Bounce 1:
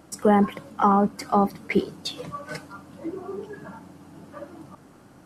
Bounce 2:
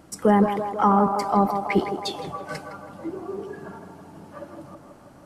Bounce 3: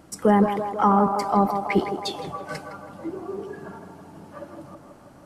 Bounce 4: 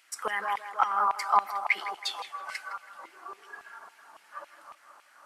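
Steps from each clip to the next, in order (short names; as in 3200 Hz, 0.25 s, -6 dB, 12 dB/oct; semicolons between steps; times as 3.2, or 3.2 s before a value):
low shelf 75 Hz +5 dB; narrowing echo 0.162 s, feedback 75%, band-pass 720 Hz, level -5.5 dB
nothing audible
LFO high-pass saw down 3.6 Hz 1000–2500 Hz; gain -2.5 dB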